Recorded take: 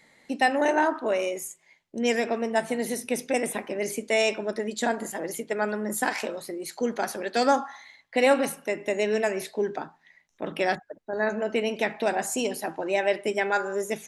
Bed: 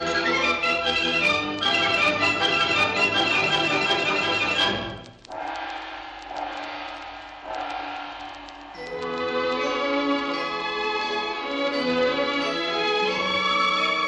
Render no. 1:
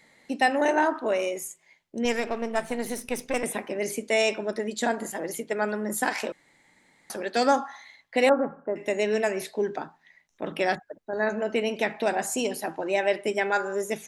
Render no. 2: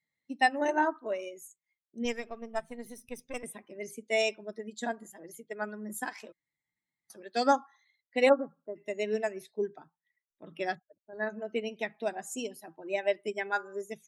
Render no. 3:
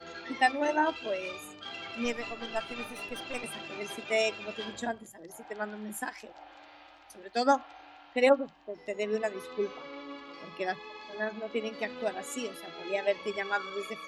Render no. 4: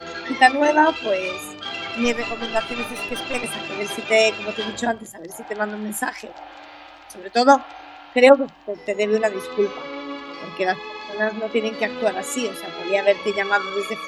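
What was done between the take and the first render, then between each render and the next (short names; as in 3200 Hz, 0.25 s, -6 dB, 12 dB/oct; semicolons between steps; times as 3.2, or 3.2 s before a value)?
2.05–3.44 half-wave gain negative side -7 dB; 6.32–7.1 room tone; 8.29–8.76 Chebyshev low-pass 1400 Hz, order 4
per-bin expansion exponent 1.5; upward expander 1.5:1, over -36 dBFS
add bed -20 dB
gain +11.5 dB; limiter -1 dBFS, peak gain reduction 1 dB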